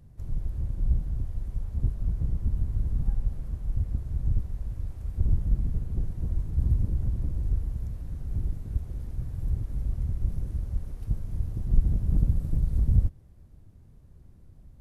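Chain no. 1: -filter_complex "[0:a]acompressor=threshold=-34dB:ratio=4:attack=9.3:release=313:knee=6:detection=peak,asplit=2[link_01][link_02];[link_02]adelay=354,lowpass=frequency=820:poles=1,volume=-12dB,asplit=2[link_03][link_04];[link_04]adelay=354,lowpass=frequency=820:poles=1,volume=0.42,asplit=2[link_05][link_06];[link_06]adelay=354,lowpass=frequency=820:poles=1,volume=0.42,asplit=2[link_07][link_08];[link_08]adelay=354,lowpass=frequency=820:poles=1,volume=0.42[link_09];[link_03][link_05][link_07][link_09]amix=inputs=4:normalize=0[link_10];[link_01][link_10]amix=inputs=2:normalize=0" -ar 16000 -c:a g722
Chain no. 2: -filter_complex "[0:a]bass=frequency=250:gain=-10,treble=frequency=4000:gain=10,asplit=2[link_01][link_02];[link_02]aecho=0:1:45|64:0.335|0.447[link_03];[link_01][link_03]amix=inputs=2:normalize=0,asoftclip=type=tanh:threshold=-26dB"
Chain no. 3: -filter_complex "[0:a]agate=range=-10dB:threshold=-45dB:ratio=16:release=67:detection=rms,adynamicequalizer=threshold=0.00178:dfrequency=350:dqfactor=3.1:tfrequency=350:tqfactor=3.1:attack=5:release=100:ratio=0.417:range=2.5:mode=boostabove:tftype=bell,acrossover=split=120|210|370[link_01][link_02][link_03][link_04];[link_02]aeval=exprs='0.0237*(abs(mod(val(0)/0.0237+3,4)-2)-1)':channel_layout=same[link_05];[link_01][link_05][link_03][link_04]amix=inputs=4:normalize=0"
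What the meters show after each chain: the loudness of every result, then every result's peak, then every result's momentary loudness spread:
−41.0, −41.0, −31.0 LKFS; −24.5, −26.0, −7.0 dBFS; 7, 8, 9 LU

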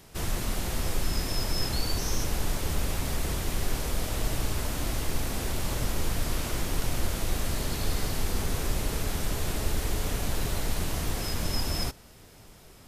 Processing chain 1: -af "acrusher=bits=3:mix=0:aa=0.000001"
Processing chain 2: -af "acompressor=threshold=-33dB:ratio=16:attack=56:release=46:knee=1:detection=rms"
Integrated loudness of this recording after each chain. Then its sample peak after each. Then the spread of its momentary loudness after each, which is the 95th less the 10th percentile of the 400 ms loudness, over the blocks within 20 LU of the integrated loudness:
−27.0, −36.0 LKFS; −11.0, −21.0 dBFS; 3, 2 LU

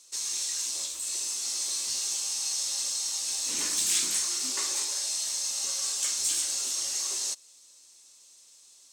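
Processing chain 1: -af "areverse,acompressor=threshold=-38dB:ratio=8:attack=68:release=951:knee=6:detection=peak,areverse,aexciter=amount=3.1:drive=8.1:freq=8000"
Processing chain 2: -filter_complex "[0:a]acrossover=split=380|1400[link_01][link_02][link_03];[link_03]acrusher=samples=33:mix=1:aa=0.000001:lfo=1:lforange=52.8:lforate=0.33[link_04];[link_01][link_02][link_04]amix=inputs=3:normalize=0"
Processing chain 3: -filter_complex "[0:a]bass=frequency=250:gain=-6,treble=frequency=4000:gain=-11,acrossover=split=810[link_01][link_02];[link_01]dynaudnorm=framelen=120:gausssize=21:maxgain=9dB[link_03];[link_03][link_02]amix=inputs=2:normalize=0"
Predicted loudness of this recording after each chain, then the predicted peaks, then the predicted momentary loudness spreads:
−31.5, −31.0, −36.0 LKFS; −17.0, −15.5, −21.5 dBFS; 16, 5, 6 LU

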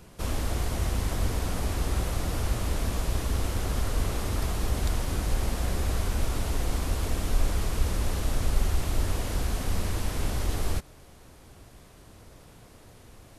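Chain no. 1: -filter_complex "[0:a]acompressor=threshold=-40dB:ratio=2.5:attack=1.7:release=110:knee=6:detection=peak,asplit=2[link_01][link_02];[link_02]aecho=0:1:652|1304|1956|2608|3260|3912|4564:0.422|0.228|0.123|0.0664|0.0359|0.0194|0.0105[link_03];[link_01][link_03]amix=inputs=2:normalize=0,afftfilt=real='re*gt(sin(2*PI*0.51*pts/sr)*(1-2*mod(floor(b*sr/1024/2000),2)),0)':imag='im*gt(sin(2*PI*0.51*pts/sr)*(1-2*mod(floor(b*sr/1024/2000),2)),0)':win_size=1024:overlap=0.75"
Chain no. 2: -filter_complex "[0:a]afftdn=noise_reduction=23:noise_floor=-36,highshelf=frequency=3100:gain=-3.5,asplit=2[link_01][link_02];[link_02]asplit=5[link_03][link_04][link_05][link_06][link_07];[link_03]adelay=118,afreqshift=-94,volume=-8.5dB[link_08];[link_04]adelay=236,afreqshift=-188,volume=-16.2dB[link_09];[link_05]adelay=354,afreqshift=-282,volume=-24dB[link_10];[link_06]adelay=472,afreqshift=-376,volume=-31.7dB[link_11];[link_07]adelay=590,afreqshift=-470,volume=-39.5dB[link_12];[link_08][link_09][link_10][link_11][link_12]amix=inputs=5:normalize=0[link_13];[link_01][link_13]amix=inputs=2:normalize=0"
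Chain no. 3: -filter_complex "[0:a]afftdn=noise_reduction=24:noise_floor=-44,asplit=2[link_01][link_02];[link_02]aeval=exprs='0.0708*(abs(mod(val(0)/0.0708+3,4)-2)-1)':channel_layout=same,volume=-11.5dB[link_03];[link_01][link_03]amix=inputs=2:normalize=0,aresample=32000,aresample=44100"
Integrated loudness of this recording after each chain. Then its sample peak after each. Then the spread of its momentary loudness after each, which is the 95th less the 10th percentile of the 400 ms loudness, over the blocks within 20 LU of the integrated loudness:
−44.0, −30.5, −29.5 LKFS; −25.0, −10.0, −10.0 dBFS; 11, 3, 2 LU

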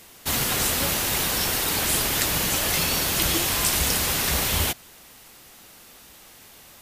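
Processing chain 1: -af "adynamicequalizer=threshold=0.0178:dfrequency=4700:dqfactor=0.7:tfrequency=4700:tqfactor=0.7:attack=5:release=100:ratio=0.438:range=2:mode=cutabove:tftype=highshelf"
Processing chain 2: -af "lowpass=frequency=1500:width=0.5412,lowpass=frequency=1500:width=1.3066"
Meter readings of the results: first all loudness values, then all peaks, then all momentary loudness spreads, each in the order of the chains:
−23.5, −30.5 LKFS; −6.5, −14.5 dBFS; 2, 2 LU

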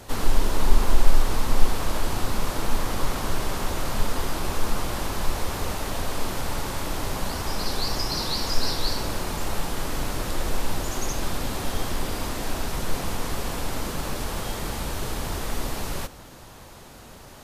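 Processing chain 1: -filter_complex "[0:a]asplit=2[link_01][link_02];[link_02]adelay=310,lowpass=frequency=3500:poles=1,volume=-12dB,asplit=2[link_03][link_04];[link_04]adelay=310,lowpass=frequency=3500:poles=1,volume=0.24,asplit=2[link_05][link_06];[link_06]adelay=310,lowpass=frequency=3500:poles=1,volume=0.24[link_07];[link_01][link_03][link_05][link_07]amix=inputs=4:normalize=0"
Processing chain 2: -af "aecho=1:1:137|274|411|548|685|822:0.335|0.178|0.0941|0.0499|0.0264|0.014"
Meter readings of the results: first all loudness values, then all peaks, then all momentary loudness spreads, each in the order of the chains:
−29.0, −28.5 LKFS; −2.0, −1.0 dBFS; 5, 5 LU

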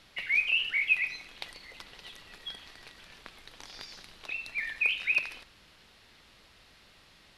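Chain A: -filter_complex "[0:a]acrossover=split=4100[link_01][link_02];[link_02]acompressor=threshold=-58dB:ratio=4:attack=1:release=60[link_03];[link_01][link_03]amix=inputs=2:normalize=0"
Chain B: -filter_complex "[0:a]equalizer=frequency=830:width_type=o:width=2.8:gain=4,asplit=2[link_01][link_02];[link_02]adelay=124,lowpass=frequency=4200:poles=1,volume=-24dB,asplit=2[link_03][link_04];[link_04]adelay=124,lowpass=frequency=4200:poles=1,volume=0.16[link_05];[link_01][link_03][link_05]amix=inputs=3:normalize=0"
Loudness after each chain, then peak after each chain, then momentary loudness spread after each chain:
−29.0, −26.5 LKFS; −15.0, −12.5 dBFS; 22, 22 LU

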